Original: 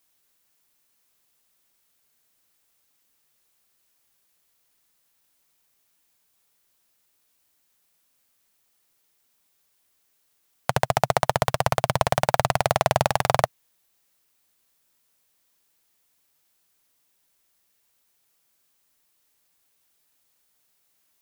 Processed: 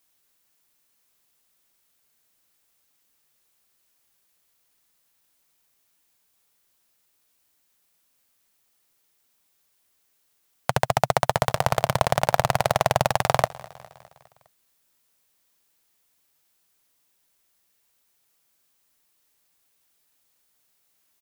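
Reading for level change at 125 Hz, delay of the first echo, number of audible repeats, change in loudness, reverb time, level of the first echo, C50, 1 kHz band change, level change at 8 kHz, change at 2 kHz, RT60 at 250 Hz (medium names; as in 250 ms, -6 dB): 0.0 dB, 204 ms, 3, 0.0 dB, no reverb, -21.0 dB, no reverb, 0.0 dB, 0.0 dB, 0.0 dB, no reverb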